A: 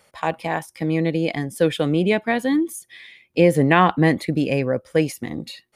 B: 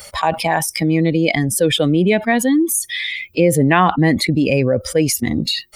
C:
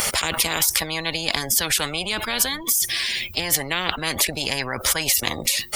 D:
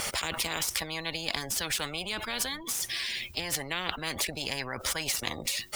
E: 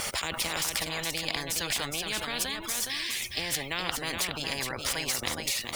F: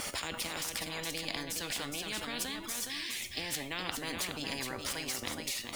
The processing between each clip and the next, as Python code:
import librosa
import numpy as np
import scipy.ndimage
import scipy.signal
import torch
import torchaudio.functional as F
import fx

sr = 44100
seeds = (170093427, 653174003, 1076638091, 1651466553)

y1 = fx.bin_expand(x, sr, power=1.5)
y1 = fx.env_flatten(y1, sr, amount_pct=70)
y1 = y1 * librosa.db_to_amplitude(1.0)
y2 = fx.spectral_comp(y1, sr, ratio=10.0)
y3 = scipy.ndimage.median_filter(y2, 3, mode='constant')
y3 = y3 * librosa.db_to_amplitude(-8.5)
y4 = y3 + 10.0 ** (-5.0 / 20.0) * np.pad(y3, (int(417 * sr / 1000.0), 0))[:len(y3)]
y5 = fx.peak_eq(y4, sr, hz=260.0, db=6.5, octaves=0.74)
y5 = fx.rider(y5, sr, range_db=10, speed_s=0.5)
y5 = fx.comb_fb(y5, sr, f0_hz=97.0, decay_s=0.55, harmonics='all', damping=0.0, mix_pct=60)